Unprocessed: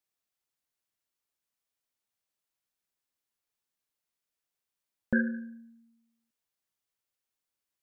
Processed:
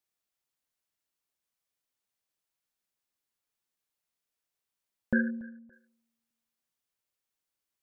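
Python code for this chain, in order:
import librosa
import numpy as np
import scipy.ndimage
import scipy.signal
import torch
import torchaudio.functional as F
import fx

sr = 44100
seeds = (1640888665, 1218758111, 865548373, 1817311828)

y = fx.gaussian_blur(x, sr, sigma=9.8, at=(5.3, 5.73))
y = fx.echo_feedback(y, sr, ms=284, feedback_pct=31, wet_db=-22.5)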